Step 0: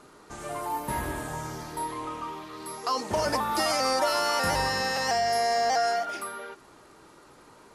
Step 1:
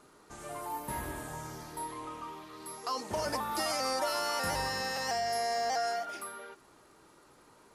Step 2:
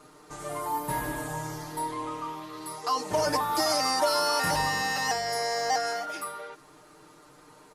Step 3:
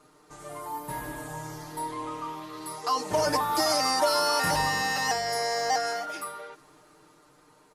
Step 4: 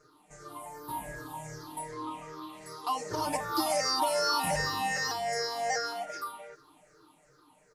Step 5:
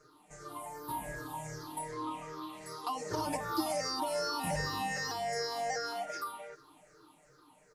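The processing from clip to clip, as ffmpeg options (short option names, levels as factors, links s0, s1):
-af "highshelf=f=10000:g=6.5,volume=0.447"
-af "aecho=1:1:6.6:0.9,volume=1.5"
-af "dynaudnorm=f=400:g=9:m=2.11,volume=0.531"
-af "afftfilt=real='re*pow(10,16/40*sin(2*PI*(0.55*log(max(b,1)*sr/1024/100)/log(2)-(-2.6)*(pts-256)/sr)))':imag='im*pow(10,16/40*sin(2*PI*(0.55*log(max(b,1)*sr/1024/100)/log(2)-(-2.6)*(pts-256)/sr)))':win_size=1024:overlap=0.75,volume=0.447"
-filter_complex "[0:a]acrossover=split=440[s0][s1];[s1]acompressor=threshold=0.02:ratio=5[s2];[s0][s2]amix=inputs=2:normalize=0"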